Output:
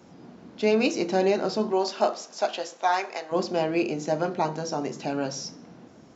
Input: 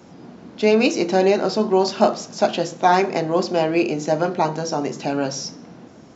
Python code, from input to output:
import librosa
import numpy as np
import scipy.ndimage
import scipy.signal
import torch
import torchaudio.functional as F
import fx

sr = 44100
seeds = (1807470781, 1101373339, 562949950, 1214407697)

y = fx.highpass(x, sr, hz=fx.line((1.71, 300.0), (3.31, 860.0)), slope=12, at=(1.71, 3.31), fade=0.02)
y = F.gain(torch.from_numpy(y), -6.0).numpy()